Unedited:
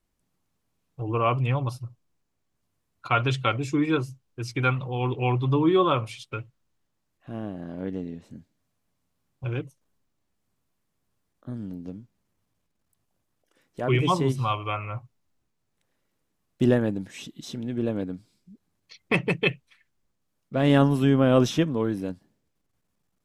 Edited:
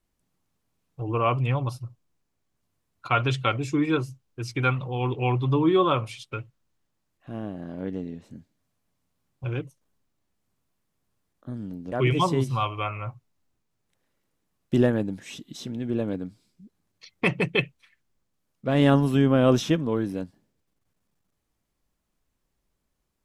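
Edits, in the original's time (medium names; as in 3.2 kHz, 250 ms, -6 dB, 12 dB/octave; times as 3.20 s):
11.92–13.80 s: delete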